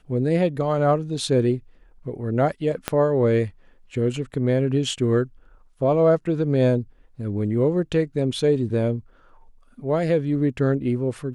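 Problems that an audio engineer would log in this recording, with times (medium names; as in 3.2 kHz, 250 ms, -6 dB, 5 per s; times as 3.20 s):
2.88 s: pop -7 dBFS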